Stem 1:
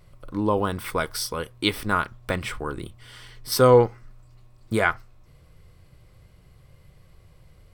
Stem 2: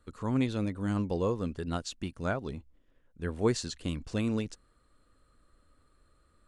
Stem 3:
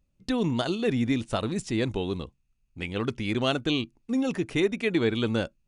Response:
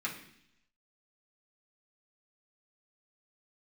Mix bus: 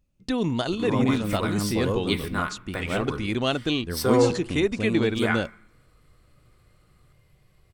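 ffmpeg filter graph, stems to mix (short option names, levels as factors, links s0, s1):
-filter_complex "[0:a]adelay=450,volume=0.473,asplit=2[s0][s1];[s1]volume=0.355[s2];[1:a]adelay=650,volume=1.26[s3];[2:a]volume=1.12[s4];[3:a]atrim=start_sample=2205[s5];[s2][s5]afir=irnorm=-1:irlink=0[s6];[s0][s3][s4][s6]amix=inputs=4:normalize=0"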